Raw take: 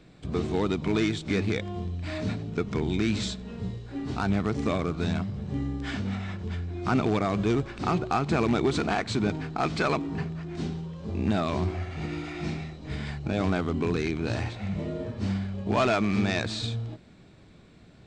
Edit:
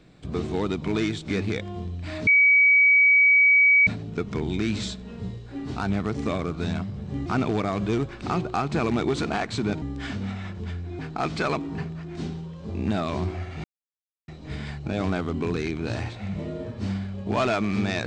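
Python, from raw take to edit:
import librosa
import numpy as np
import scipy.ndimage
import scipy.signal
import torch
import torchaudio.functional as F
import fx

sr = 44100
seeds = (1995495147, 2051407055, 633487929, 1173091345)

y = fx.edit(x, sr, fx.insert_tone(at_s=2.27, length_s=1.6, hz=2270.0, db=-13.5),
    fx.move(start_s=5.66, length_s=1.17, to_s=9.39),
    fx.silence(start_s=12.04, length_s=0.64), tone=tone)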